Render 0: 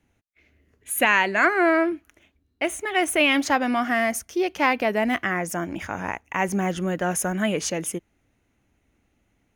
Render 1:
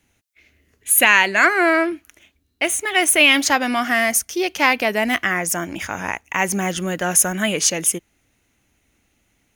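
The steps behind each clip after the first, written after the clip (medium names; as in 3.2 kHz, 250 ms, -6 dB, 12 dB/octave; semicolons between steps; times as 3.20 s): treble shelf 2.2 kHz +12 dB; trim +1 dB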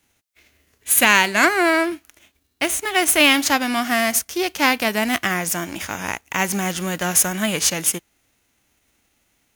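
formants flattened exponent 0.6; trim -1 dB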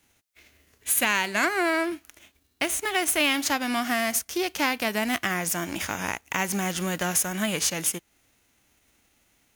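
compression 2:1, threshold -27 dBFS, peak gain reduction 10 dB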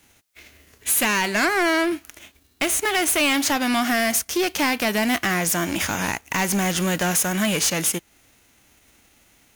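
saturation -24.5 dBFS, distortion -10 dB; trim +8.5 dB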